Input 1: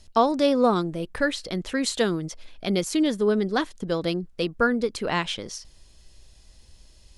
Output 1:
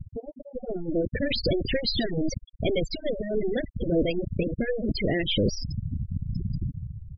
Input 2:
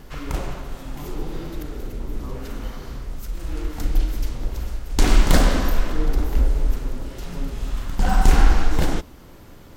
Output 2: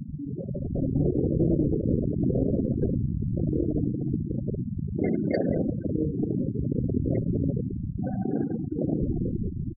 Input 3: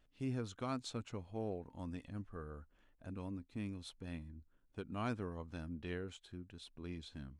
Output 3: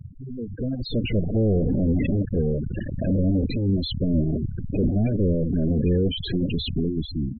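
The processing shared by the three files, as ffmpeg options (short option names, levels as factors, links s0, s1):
-filter_complex "[0:a]aeval=exprs='val(0)+0.5*0.141*sgn(val(0))':c=same,bass=f=250:g=6,treble=f=4000:g=-9,afftfilt=real='re*lt(hypot(re,im),1)':imag='im*lt(hypot(re,im),1)':win_size=1024:overlap=0.75,equalizer=f=4800:w=7:g=7.5,asplit=2[s0][s1];[s1]adelay=190,highpass=300,lowpass=3400,asoftclip=type=hard:threshold=0.178,volume=0.0562[s2];[s0][s2]amix=inputs=2:normalize=0,dynaudnorm=f=140:g=11:m=2.82,afftfilt=real='re*gte(hypot(re,im),0.355)':imag='im*gte(hypot(re,im),0.355)':win_size=1024:overlap=0.75,asuperstop=centerf=1100:order=8:qfactor=0.88,volume=0.398"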